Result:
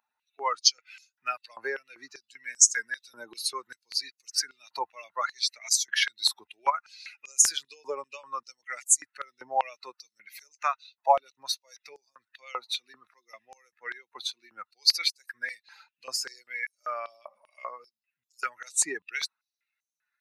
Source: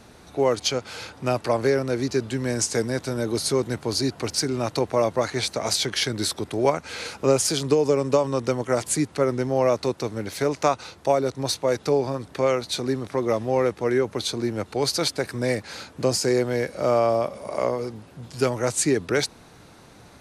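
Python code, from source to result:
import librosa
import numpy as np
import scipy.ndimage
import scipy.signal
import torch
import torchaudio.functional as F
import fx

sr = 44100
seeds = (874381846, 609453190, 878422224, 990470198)

y = fx.bin_expand(x, sr, power=2.0)
y = fx.filter_held_highpass(y, sr, hz=5.1, low_hz=920.0, high_hz=6500.0)
y = y * 10.0 ** (1.0 / 20.0)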